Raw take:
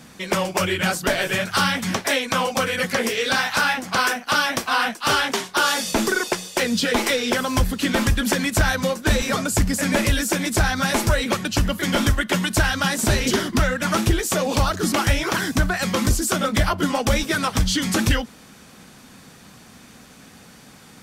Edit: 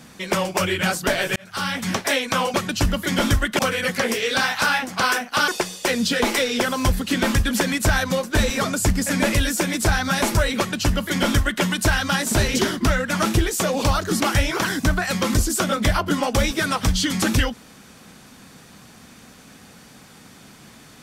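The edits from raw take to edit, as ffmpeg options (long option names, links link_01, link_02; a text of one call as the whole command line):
ffmpeg -i in.wav -filter_complex "[0:a]asplit=5[link_01][link_02][link_03][link_04][link_05];[link_01]atrim=end=1.36,asetpts=PTS-STARTPTS,afade=type=out:start_time=1.356:duration=0.004:curve=hsin[link_06];[link_02]atrim=start=1.36:end=2.542,asetpts=PTS-STARTPTS,afade=type=in:duration=0.53[link_07];[link_03]atrim=start=11.298:end=12.352[link_08];[link_04]atrim=start=2.538:end=4.432[link_09];[link_05]atrim=start=6.198[link_10];[link_06][link_07]concat=n=2:v=0:a=1[link_11];[link_11][link_08]acrossfade=duration=0.004:curve1=hsin:curve2=hsin[link_12];[link_12][link_09]acrossfade=duration=0.004:curve1=hsin:curve2=hsin[link_13];[link_13][link_10]acrossfade=duration=0.004:curve1=hsin:curve2=hsin" out.wav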